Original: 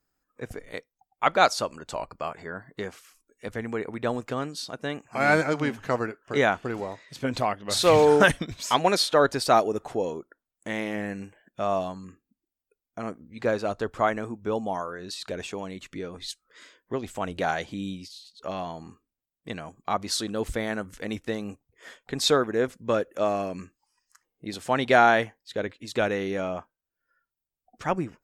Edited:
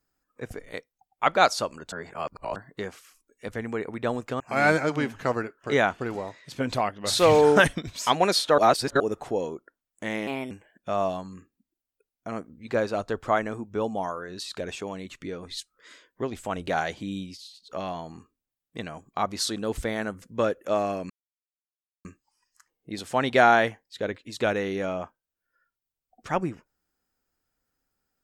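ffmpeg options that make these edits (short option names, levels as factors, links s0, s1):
-filter_complex "[0:a]asplit=10[s0][s1][s2][s3][s4][s5][s6][s7][s8][s9];[s0]atrim=end=1.922[s10];[s1]atrim=start=1.918:end=2.562,asetpts=PTS-STARTPTS,areverse[s11];[s2]atrim=start=2.558:end=4.402[s12];[s3]atrim=start=5.038:end=9.222[s13];[s4]atrim=start=9.218:end=9.642,asetpts=PTS-STARTPTS,areverse[s14];[s5]atrim=start=9.638:end=10.914[s15];[s6]atrim=start=10.91:end=11.22,asetpts=PTS-STARTPTS,asetrate=57330,aresample=44100,atrim=end_sample=10516,asetpts=PTS-STARTPTS[s16];[s7]atrim=start=11.216:end=20.932[s17];[s8]atrim=start=22.718:end=23.6,asetpts=PTS-STARTPTS,afade=t=out:st=0.878:d=0.004:c=hsin,apad=pad_dur=0.95[s18];[s9]atrim=start=23.6,asetpts=PTS-STARTPTS,afade=t=in:d=0.004:c=hsin[s19];[s10][s11]acrossfade=d=0.004:c1=hsin:c2=hsin[s20];[s20][s12]acrossfade=d=0.004:c1=hsin:c2=hsin[s21];[s21][s13]acrossfade=d=0.004:c1=hsin:c2=hsin[s22];[s22][s14]acrossfade=d=0.004:c1=hsin:c2=hsin[s23];[s23][s15]acrossfade=d=0.004:c1=hsin:c2=hsin[s24];[s24][s16]acrossfade=d=0.004:c1=hsin:c2=hsin[s25];[s25][s17]acrossfade=d=0.004:c1=hsin:c2=hsin[s26];[s18][s19]concat=n=2:v=0:a=1[s27];[s26][s27]acrossfade=d=0.004:c1=hsin:c2=hsin"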